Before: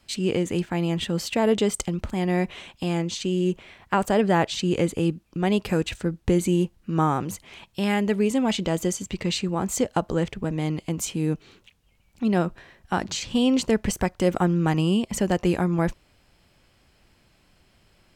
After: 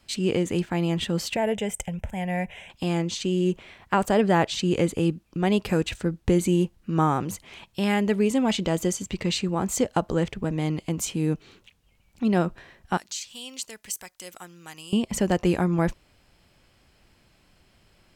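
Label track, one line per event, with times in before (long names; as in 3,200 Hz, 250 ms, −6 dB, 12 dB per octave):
1.360000	2.700000	phaser with its sweep stopped centre 1,200 Hz, stages 6
12.970000	14.930000	first-order pre-emphasis coefficient 0.97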